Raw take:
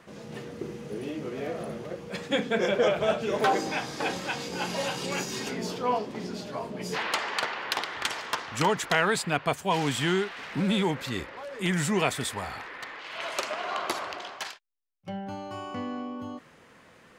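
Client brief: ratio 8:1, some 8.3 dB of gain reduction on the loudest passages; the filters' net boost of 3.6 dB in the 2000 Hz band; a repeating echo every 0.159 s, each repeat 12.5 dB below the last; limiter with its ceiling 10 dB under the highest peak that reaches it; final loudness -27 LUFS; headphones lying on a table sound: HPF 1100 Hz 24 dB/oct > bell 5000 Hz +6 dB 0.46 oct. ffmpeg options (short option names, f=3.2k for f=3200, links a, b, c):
-af "equalizer=f=2k:t=o:g=4.5,acompressor=threshold=-27dB:ratio=8,alimiter=limit=-24dB:level=0:latency=1,highpass=f=1.1k:w=0.5412,highpass=f=1.1k:w=1.3066,equalizer=f=5k:t=o:w=0.46:g=6,aecho=1:1:159|318|477:0.237|0.0569|0.0137,volume=9dB"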